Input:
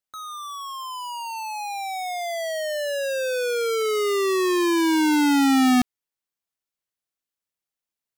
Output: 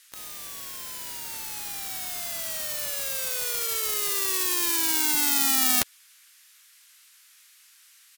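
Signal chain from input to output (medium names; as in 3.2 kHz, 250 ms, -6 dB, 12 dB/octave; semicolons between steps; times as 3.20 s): spectral contrast reduction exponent 0.16; band noise 1.4–14 kHz -53 dBFS; harmony voices -3 st -12 dB, +5 st -14 dB; trim -3.5 dB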